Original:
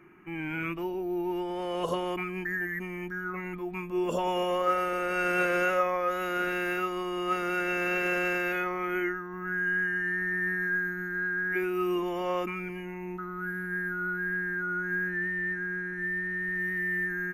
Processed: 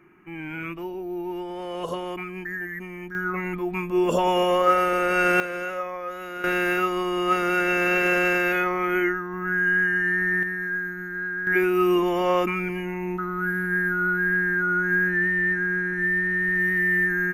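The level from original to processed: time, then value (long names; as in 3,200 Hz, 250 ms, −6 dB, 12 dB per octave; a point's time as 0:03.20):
0 dB
from 0:03.15 +7.5 dB
from 0:05.40 −4 dB
from 0:06.44 +7 dB
from 0:10.43 +1 dB
from 0:11.47 +8.5 dB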